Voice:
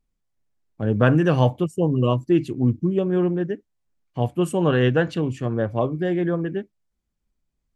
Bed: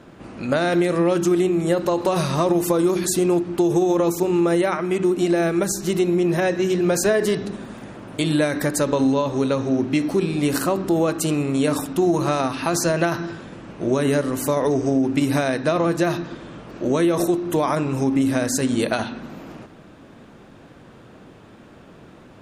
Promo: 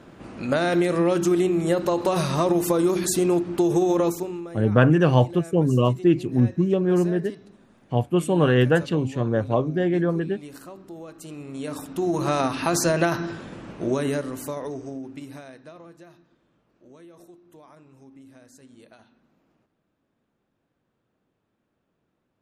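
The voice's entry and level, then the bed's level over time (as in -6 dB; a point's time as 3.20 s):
3.75 s, +0.5 dB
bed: 4.06 s -2 dB
4.53 s -20.5 dB
11.10 s -20.5 dB
12.38 s -1 dB
13.69 s -1 dB
16.16 s -29.5 dB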